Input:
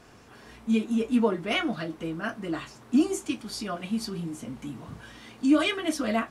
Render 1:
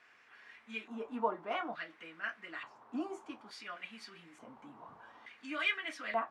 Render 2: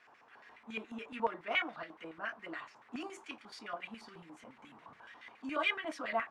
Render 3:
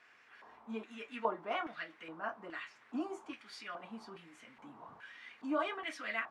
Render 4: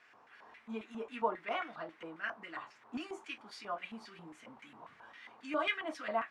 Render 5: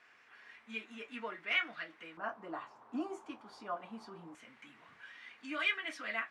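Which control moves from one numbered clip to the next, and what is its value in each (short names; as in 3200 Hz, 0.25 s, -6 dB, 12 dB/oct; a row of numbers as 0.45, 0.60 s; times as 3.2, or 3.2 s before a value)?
LFO band-pass, rate: 0.57, 7.1, 1.2, 3.7, 0.23 Hz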